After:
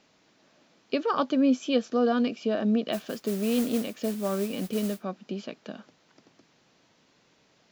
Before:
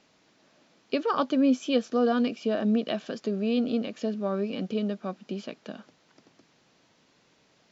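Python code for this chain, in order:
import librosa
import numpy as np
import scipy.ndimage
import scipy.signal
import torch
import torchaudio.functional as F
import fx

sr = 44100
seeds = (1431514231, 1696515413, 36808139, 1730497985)

y = fx.mod_noise(x, sr, seeds[0], snr_db=15, at=(2.92, 5.02), fade=0.02)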